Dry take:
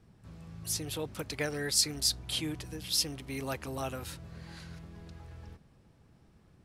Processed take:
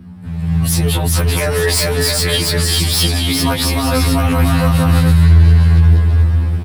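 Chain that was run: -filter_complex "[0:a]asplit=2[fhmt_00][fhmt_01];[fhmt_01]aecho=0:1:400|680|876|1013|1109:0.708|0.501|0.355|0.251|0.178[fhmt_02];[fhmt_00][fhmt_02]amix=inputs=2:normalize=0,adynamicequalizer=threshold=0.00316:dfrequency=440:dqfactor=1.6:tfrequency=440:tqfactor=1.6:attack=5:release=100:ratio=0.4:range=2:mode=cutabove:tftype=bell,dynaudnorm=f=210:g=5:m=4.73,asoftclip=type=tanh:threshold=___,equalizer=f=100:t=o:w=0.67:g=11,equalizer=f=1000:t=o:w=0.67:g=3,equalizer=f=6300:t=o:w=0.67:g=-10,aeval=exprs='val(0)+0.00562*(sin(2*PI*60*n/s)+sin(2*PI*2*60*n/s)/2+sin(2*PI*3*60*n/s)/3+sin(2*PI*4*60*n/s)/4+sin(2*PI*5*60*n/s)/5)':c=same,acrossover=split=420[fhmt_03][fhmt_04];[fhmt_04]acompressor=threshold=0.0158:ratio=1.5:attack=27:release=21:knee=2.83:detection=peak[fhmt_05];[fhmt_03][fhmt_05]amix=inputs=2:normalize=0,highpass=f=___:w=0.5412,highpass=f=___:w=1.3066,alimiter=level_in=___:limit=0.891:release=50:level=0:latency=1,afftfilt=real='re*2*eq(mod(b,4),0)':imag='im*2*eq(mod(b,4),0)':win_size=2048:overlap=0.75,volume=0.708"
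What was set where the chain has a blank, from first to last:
0.168, 43, 43, 11.2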